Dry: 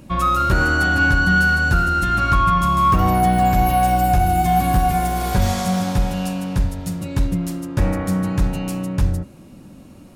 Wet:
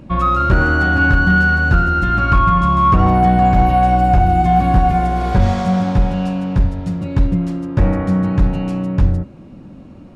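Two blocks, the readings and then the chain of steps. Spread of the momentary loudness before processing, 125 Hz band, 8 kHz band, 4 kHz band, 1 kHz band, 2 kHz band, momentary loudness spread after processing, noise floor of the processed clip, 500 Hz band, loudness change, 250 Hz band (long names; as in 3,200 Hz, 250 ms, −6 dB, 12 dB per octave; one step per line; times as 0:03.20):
9 LU, +4.5 dB, below −10 dB, −3.5 dB, +3.0 dB, +1.5 dB, 7 LU, −38 dBFS, +3.5 dB, +3.5 dB, +4.5 dB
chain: head-to-tape spacing loss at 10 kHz 24 dB
hard clipping −9.5 dBFS, distortion −30 dB
level +5 dB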